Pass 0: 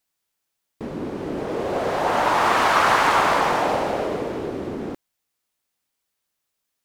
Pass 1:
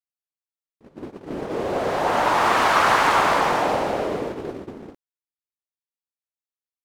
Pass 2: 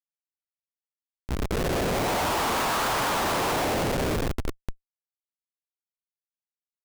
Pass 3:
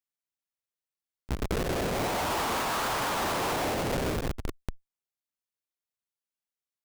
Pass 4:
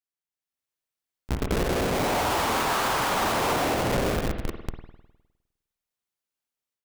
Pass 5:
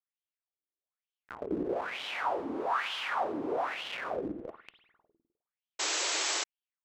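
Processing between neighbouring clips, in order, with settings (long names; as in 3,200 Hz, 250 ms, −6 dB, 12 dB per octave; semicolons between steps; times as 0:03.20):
noise gate −27 dBFS, range −24 dB
low-shelf EQ 65 Hz −7.5 dB; comparator with hysteresis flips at −24 dBFS; level −1.5 dB
one-sided soft clipper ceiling −36 dBFS
automatic gain control gain up to 9 dB; spring reverb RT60 1 s, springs 51 ms, chirp 50 ms, DRR 6 dB; level −5.5 dB
LFO wah 1.1 Hz 290–3,200 Hz, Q 5; sound drawn into the spectrogram noise, 0:05.79–0:06.44, 290–8,000 Hz −34 dBFS; level +2.5 dB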